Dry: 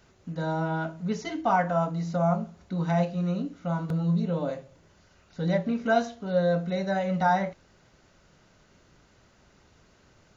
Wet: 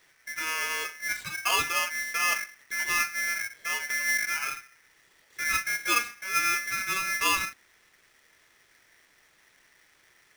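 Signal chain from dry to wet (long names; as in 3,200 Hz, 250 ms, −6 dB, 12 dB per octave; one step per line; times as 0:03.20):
ring modulator with a square carrier 1,900 Hz
level −2.5 dB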